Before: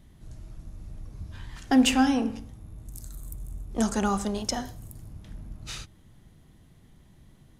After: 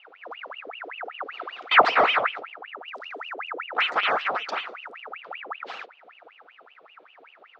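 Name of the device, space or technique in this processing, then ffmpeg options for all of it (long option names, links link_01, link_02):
voice changer toy: -af "aeval=exprs='val(0)*sin(2*PI*1600*n/s+1600*0.8/5.2*sin(2*PI*5.2*n/s))':channel_layout=same,highpass=430,equalizer=frequency=470:width_type=q:width=4:gain=5,equalizer=frequency=730:width_type=q:width=4:gain=6,equalizer=frequency=1300:width_type=q:width=4:gain=9,lowpass=frequency=3700:width=0.5412,lowpass=frequency=3700:width=1.3066,volume=2.5dB"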